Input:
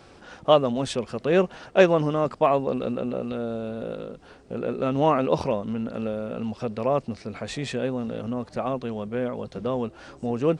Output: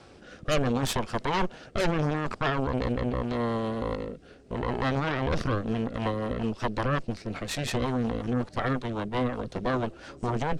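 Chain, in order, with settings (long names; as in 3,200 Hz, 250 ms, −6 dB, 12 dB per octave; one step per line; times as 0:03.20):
harmonic generator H 8 −7 dB, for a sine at −3 dBFS
rotating-speaker cabinet horn 0.75 Hz, later 5.5 Hz, at 0:05.33
brickwall limiter −19 dBFS, peak gain reduction 18 dB
level +2 dB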